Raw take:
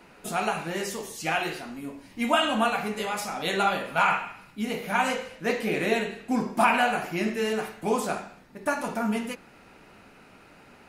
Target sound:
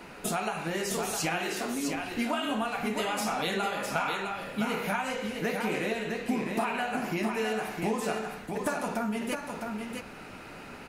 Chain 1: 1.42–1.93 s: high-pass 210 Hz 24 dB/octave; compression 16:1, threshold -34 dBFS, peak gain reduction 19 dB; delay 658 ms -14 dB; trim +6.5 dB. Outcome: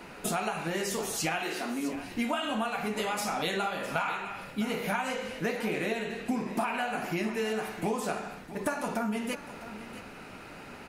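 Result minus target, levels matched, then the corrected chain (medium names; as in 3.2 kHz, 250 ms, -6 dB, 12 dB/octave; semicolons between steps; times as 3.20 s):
echo-to-direct -9 dB
1.42–1.93 s: high-pass 210 Hz 24 dB/octave; compression 16:1, threshold -34 dBFS, peak gain reduction 19 dB; delay 658 ms -5 dB; trim +6.5 dB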